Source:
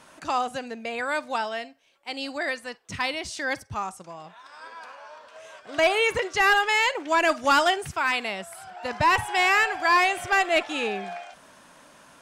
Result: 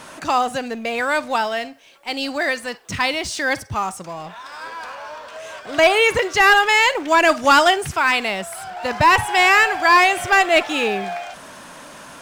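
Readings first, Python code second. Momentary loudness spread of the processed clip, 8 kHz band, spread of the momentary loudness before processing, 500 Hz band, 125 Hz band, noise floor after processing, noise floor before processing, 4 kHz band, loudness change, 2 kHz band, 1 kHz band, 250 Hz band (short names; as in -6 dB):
20 LU, +8.0 dB, 20 LU, +7.0 dB, +8.0 dB, -40 dBFS, -53 dBFS, +7.0 dB, +7.0 dB, +7.0 dB, +7.0 dB, +7.5 dB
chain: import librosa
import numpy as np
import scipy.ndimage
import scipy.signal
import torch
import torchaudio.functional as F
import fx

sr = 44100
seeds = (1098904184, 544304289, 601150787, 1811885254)

y = fx.law_mismatch(x, sr, coded='mu')
y = y * 10.0 ** (6.5 / 20.0)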